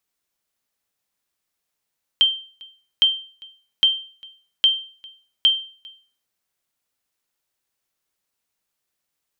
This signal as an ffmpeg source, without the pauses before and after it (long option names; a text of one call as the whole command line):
ffmpeg -f lavfi -i "aevalsrc='0.398*(sin(2*PI*3140*mod(t,0.81))*exp(-6.91*mod(t,0.81)/0.42)+0.0501*sin(2*PI*3140*max(mod(t,0.81)-0.4,0))*exp(-6.91*max(mod(t,0.81)-0.4,0)/0.42))':duration=4.05:sample_rate=44100" out.wav